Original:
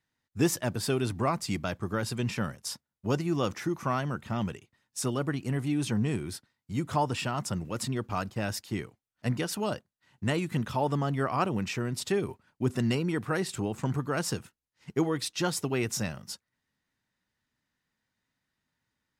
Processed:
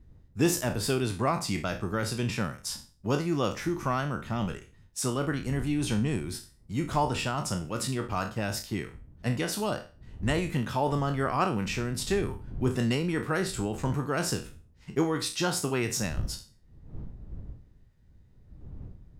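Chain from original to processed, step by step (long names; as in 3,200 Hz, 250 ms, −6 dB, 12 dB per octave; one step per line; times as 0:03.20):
peak hold with a decay on every bin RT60 0.35 s
wind on the microphone 91 Hz −44 dBFS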